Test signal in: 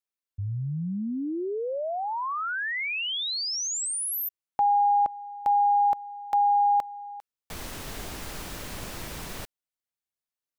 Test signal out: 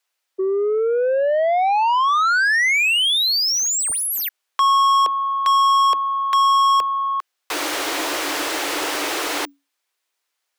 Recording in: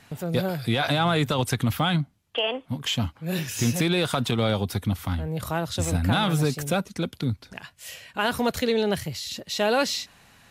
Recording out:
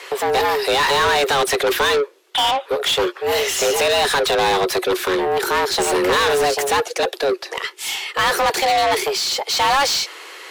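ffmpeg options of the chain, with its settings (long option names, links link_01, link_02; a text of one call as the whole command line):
ffmpeg -i in.wav -filter_complex "[0:a]afreqshift=280,equalizer=frequency=160:width=1:gain=-9,asplit=2[link_01][link_02];[link_02]highpass=frequency=720:poles=1,volume=26dB,asoftclip=type=tanh:threshold=-10dB[link_03];[link_01][link_03]amix=inputs=2:normalize=0,lowpass=frequency=5000:poles=1,volume=-6dB" out.wav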